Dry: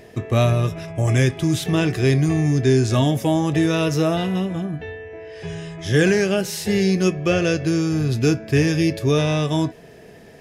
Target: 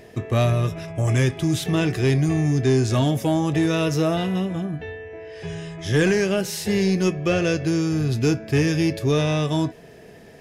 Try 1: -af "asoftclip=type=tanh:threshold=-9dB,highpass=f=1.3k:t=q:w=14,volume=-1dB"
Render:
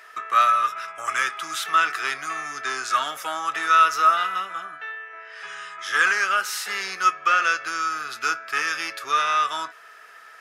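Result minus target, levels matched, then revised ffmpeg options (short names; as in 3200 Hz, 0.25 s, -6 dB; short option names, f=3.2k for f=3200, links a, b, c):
1000 Hz band +13.0 dB
-af "asoftclip=type=tanh:threshold=-9dB,volume=-1dB"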